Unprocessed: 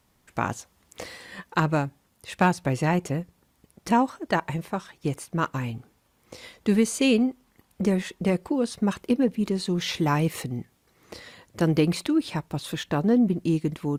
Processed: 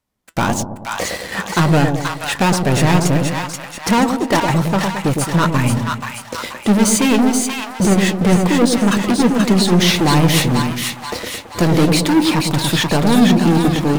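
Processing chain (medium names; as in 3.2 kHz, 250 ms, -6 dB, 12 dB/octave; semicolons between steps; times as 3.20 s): waveshaping leveller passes 5; flange 1.6 Hz, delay 3.1 ms, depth 3.1 ms, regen +73%; two-band feedback delay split 800 Hz, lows 109 ms, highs 481 ms, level -4 dB; trim +3 dB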